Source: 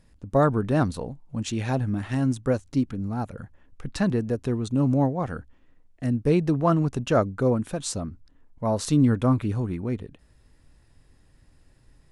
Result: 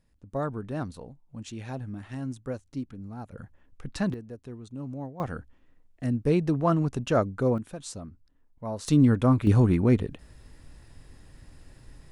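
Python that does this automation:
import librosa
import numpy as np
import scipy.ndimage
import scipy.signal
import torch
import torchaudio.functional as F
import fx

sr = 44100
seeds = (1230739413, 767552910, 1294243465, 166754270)

y = fx.gain(x, sr, db=fx.steps((0.0, -10.5), (3.32, -4.0), (4.14, -15.0), (5.2, -2.5), (7.58, -9.0), (8.88, 0.0), (9.47, 7.5)))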